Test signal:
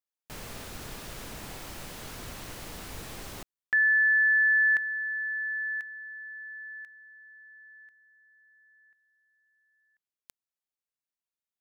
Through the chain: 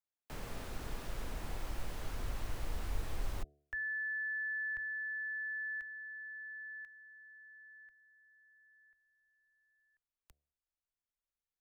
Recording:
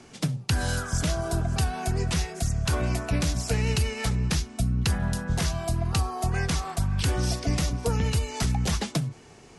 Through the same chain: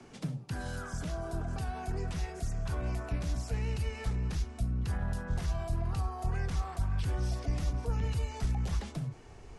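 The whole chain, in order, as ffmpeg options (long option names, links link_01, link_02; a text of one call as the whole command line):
ffmpeg -i in.wav -filter_complex "[0:a]acrossover=split=190[link_01][link_02];[link_02]acompressor=threshold=-33dB:ratio=5:attack=0.16:release=54:knee=2.83:detection=peak[link_03];[link_01][link_03]amix=inputs=2:normalize=0,highshelf=frequency=2200:gain=-8.5,bandreject=frequency=72.47:width_type=h:width=4,bandreject=frequency=144.94:width_type=h:width=4,bandreject=frequency=217.41:width_type=h:width=4,bandreject=frequency=289.88:width_type=h:width=4,bandreject=frequency=362.35:width_type=h:width=4,bandreject=frequency=434.82:width_type=h:width=4,bandreject=frequency=507.29:width_type=h:width=4,bandreject=frequency=579.76:width_type=h:width=4,bandreject=frequency=652.23:width_type=h:width=4,bandreject=frequency=724.7:width_type=h:width=4,acrossover=split=170|1200[link_04][link_05][link_06];[link_04]acompressor=threshold=-39dB:ratio=6:release=402[link_07];[link_07][link_05][link_06]amix=inputs=3:normalize=0,asubboost=boost=7:cutoff=70,volume=-1.5dB" out.wav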